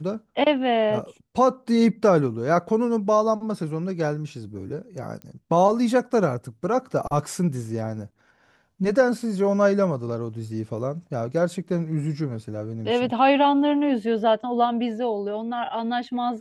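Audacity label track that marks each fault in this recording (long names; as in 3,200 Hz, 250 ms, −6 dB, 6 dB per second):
5.220000	5.220000	click −24 dBFS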